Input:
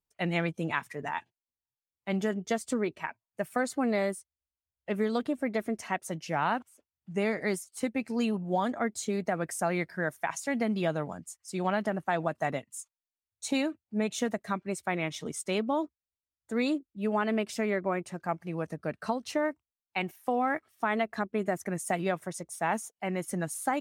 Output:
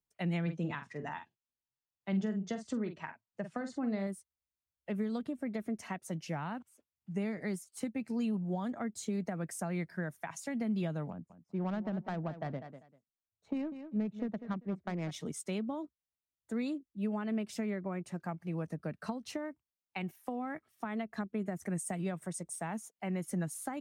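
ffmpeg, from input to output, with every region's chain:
-filter_complex "[0:a]asettb=1/sr,asplit=3[a][b][c];[a]atrim=end=0.424[d];[b]atrim=start=0.42:end=4.07,asetpts=PTS-STARTPTS,afade=t=in:d=0.004:c=qsin,afade=t=out:st=3.646:d=0.004:c=qsin,lowpass=f=6.7k:w=0.5412,lowpass=f=6.7k:w=1.3066,bandreject=f=2.3k:w=16,asplit=2[e][f];[f]adelay=46,volume=-9.5dB[g];[e][g]amix=inputs=2:normalize=0,atrim=end_sample=160965[h];[c]atrim=start=4.066[i];[d][h]acrossfade=d=0.004:c1=hsin:c2=qsin[j];[j][i]acrossfade=d=0.004:c1=qsin:c2=hsin,asettb=1/sr,asplit=3[k][l][m];[k]atrim=end=11.104[n];[l]atrim=start=11.1:end=15.11,asetpts=PTS-STARTPTS,afade=t=in:d=0.004:c=qsin,afade=t=out:st=4.006:d=0.004:c=qsin,adynamicsmooth=sensitivity=1.5:basefreq=840,aecho=1:1:196|392:0.2|0.0359,atrim=end_sample=176841[o];[m]atrim=start=15.106[p];[n][o]acrossfade=d=0.004:c1=hsin:c2=qsin[q];[q][p]acrossfade=d=0.004:c1=qsin:c2=hsin,asettb=1/sr,asplit=3[r][s][t];[r]atrim=end=21.624[u];[s]atrim=start=21.62:end=22.72,asetpts=PTS-STARTPTS,afade=t=in:d=0.004:c=qsin,afade=t=out:st=1.096:d=0.004:c=qsin,equalizer=f=8.4k:t=o:w=0.21:g=10.5,acompressor=mode=upward:threshold=-38dB:ratio=2.5:attack=3.2:release=140:knee=2.83:detection=peak[v];[t]atrim=start=22.716[w];[u][v]acrossfade=d=0.004:c1=hsin:c2=qsin[x];[x][w]acrossfade=d=0.004:c1=qsin:c2=hsin,equalizer=f=180:w=0.96:g=5.5,acrossover=split=210[y][z];[z]acompressor=threshold=-32dB:ratio=6[aa];[y][aa]amix=inputs=2:normalize=0,volume=-5dB"

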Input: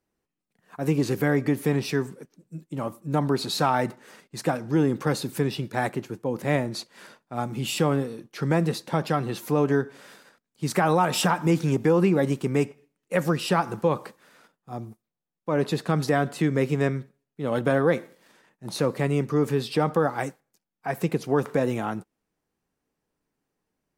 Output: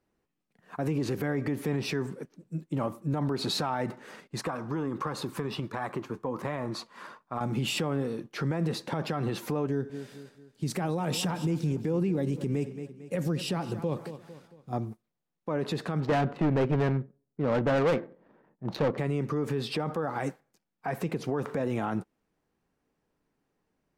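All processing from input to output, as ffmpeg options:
-filter_complex "[0:a]asettb=1/sr,asplit=3[a][b][c];[a]atrim=end=4.414[d];[b]atrim=start=4.41:end=7.41,asetpts=PTS-STARTPTS,afade=t=in:d=0.004:c=qsin,afade=t=out:st=2.996:d=0.004:c=qsin,equalizer=f=1.1k:w=2.9:g=14,flanger=delay=1.1:depth=3.9:regen=76:speed=1.4:shape=triangular,acompressor=threshold=-30dB:ratio=12:attack=3.2:release=140:knee=1:detection=peak[e];[c]atrim=start=7.406[f];[d][e]acrossfade=d=0.004:c1=hsin:c2=qsin[g];[g][f]acrossfade=d=0.004:c1=qsin:c2=hsin,asettb=1/sr,asplit=3[h][i][j];[h]atrim=end=9.674[k];[i]atrim=start=9.67:end=14.73,asetpts=PTS-STARTPTS,afade=t=in:d=0.004:c=qsin,afade=t=out:st=5.056:d=0.004:c=qsin,equalizer=f=1.2k:w=0.6:g=-12,aecho=1:1:225|450|675|900:0.133|0.0573|0.0247|0.0106,atrim=end_sample=223146[l];[j]atrim=start=14.726[m];[k][l]acrossfade=d=0.004:c1=hsin:c2=qsin[n];[n][m]acrossfade=d=0.004:c1=qsin:c2=hsin,asettb=1/sr,asplit=3[o][p][q];[o]atrim=end=16.004[r];[p]atrim=start=16:end=18.98,asetpts=PTS-STARTPTS,afade=t=in:d=0.004:c=qsin,afade=t=out:st=2.976:d=0.004:c=qsin,volume=23dB,asoftclip=hard,volume=-23dB,adynamicsmooth=sensitivity=5:basefreq=810[s];[q]atrim=start=18.976[t];[r][s]acrossfade=d=0.004:c1=hsin:c2=qsin[u];[u][t]acrossfade=d=0.004:c1=qsin:c2=hsin,aemphasis=mode=reproduction:type=cd,acompressor=threshold=-25dB:ratio=2,alimiter=limit=-24dB:level=0:latency=1:release=46,volume=3dB"

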